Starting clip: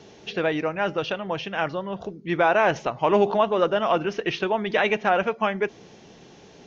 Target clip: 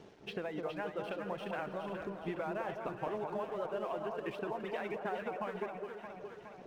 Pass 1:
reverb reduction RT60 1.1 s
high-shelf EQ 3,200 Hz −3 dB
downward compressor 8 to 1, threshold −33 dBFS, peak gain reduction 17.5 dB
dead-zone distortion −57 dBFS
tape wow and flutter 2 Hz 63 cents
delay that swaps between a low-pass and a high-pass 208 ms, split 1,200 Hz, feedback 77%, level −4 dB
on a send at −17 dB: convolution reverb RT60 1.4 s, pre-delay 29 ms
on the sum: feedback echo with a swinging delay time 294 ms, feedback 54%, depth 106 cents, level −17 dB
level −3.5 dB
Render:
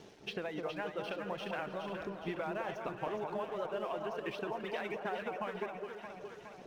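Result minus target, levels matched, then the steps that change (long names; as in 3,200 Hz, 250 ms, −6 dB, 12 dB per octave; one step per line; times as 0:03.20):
4,000 Hz band +4.5 dB
change: high-shelf EQ 3,200 Hz −13.5 dB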